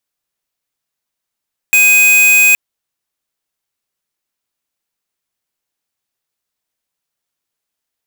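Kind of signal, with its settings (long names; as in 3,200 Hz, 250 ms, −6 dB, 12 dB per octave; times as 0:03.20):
tone square 2,500 Hz −8 dBFS 0.82 s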